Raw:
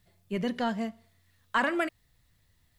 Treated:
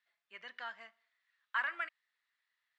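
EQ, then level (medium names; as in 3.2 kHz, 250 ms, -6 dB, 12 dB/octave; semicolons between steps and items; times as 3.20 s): ladder band-pass 1.9 kHz, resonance 30%; +3.5 dB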